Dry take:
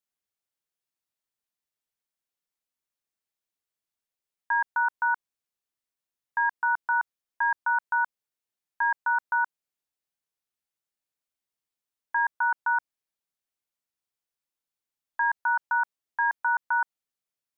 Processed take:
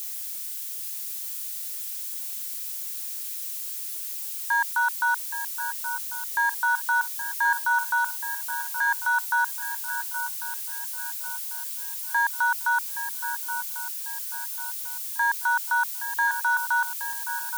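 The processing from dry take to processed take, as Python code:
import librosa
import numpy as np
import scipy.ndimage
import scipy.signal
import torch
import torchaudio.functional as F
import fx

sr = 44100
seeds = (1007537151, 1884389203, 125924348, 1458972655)

y = x + 0.5 * 10.0 ** (-32.0 / 20.0) * np.diff(np.sign(x), prepend=np.sign(x[:1]))
y = scipy.signal.sosfilt(scipy.signal.butter(2, 920.0, 'highpass', fs=sr, output='sos'), y)
y = fx.echo_swing(y, sr, ms=1095, ratio=3, feedback_pct=42, wet_db=-11.0)
y = y * 10.0 ** (3.0 / 20.0)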